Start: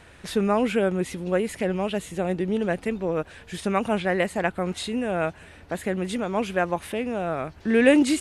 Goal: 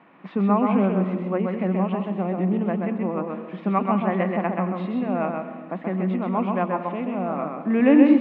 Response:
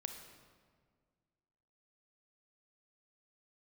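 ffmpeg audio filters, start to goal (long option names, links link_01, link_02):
-filter_complex "[0:a]highpass=frequency=180:width=0.5412,highpass=frequency=180:width=1.3066,equalizer=frequency=190:width_type=q:width=4:gain=9,equalizer=frequency=280:width_type=q:width=4:gain=7,equalizer=frequency=450:width_type=q:width=4:gain=-4,equalizer=frequency=770:width_type=q:width=4:gain=4,equalizer=frequency=1100:width_type=q:width=4:gain=9,equalizer=frequency=1600:width_type=q:width=4:gain=-8,lowpass=frequency=2400:width=0.5412,lowpass=frequency=2400:width=1.3066,asplit=2[link_01][link_02];[1:a]atrim=start_sample=2205,adelay=130[link_03];[link_02][link_03]afir=irnorm=-1:irlink=0,volume=-0.5dB[link_04];[link_01][link_04]amix=inputs=2:normalize=0,volume=-3dB"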